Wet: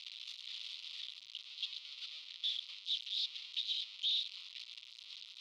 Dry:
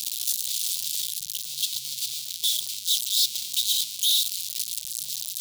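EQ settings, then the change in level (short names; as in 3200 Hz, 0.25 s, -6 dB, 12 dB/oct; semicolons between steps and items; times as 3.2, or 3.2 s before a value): ladder high-pass 500 Hz, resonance 30%; LPF 4200 Hz 12 dB/oct; air absorption 350 m; +6.5 dB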